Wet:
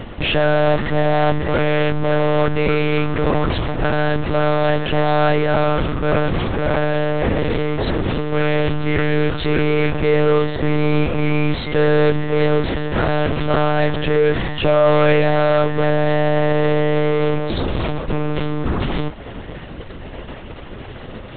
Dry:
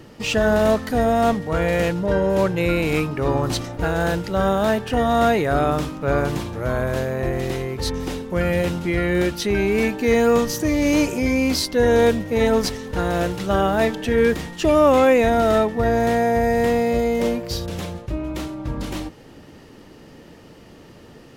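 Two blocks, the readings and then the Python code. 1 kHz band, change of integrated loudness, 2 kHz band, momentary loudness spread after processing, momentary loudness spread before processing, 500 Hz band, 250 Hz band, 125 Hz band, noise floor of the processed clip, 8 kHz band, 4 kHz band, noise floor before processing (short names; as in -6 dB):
+1.5 dB, +2.0 dB, +3.5 dB, 8 LU, 9 LU, +2.0 dB, +0.5 dB, +6.0 dB, -33 dBFS, under -40 dB, +2.5 dB, -45 dBFS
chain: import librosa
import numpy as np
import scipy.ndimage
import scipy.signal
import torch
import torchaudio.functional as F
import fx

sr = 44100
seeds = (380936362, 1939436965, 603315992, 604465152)

p1 = fx.fuzz(x, sr, gain_db=38.0, gate_db=-46.0)
p2 = x + F.gain(torch.from_numpy(p1), -6.0).numpy()
p3 = fx.lpc_monotone(p2, sr, seeds[0], pitch_hz=150.0, order=10)
y = F.gain(torch.from_numpy(p3), -2.0).numpy()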